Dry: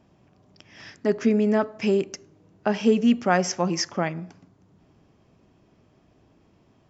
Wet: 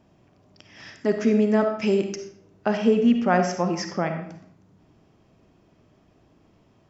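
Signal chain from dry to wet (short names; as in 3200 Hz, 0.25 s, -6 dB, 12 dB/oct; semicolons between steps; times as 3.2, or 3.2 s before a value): 2.77–4.22 high shelf 4200 Hz -11 dB; reverb RT60 0.65 s, pre-delay 15 ms, DRR 6 dB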